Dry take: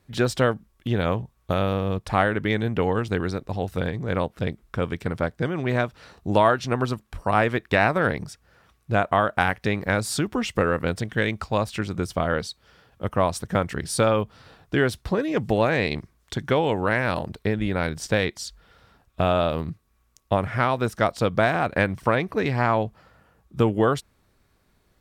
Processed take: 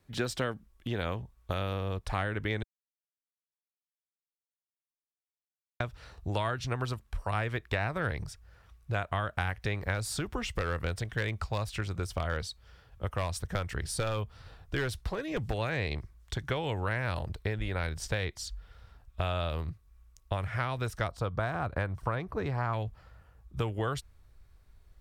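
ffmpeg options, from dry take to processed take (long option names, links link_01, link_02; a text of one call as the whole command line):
ffmpeg -i in.wav -filter_complex "[0:a]asettb=1/sr,asplit=3[link_01][link_02][link_03];[link_01]atrim=end=9.944[link_04];[link_02]atrim=start=9.94:end=15.54,asetpts=PTS-STARTPTS,afade=type=in:duration=0.004:curve=qsin,afade=type=out:start_time=5.596:duration=0.004:curve=qsin,volume=14dB,asoftclip=hard,volume=-14dB[link_05];[link_03]atrim=start=15.536[link_06];[link_04][link_05]acrossfade=duration=0.004:curve1=hsin:curve2=qsin[link_07];[link_07][link_06]acrossfade=duration=0.004:curve1=qsin:curve2=hsin,asettb=1/sr,asplit=3[link_08][link_09][link_10];[link_08]atrim=end=21.084[link_11];[link_09]atrim=start=21.08:end=22.73,asetpts=PTS-STARTPTS,afade=type=in:duration=0.004:curve=qsin,afade=type=out:start_time=1.646:duration=0.004:curve=qsin,highshelf=frequency=1600:width_type=q:width=1.5:gain=-7.5[link_12];[link_10]atrim=start=22.726[link_13];[link_11][link_12]acrossfade=duration=0.004:curve1=hsin:curve2=qsin[link_14];[link_14][link_13]acrossfade=duration=0.004:curve1=qsin:curve2=hsin,asplit=3[link_15][link_16][link_17];[link_15]atrim=end=2.63,asetpts=PTS-STARTPTS,afade=type=out:start_time=2.626:duration=0.004:curve=hsin[link_18];[link_16]atrim=start=2.63:end=5.8,asetpts=PTS-STARTPTS,volume=0[link_19];[link_17]atrim=start=5.8,asetpts=PTS-STARTPTS,afade=type=in:duration=0.004:curve=hsin[link_20];[link_18][link_19][link_20]concat=n=3:v=0:a=1,asubboost=boost=9:cutoff=71,acrossover=split=350|1500[link_21][link_22][link_23];[link_21]acompressor=threshold=-28dB:ratio=4[link_24];[link_22]acompressor=threshold=-30dB:ratio=4[link_25];[link_23]acompressor=threshold=-29dB:ratio=4[link_26];[link_24][link_25][link_26]amix=inputs=3:normalize=0,volume=-5dB" out.wav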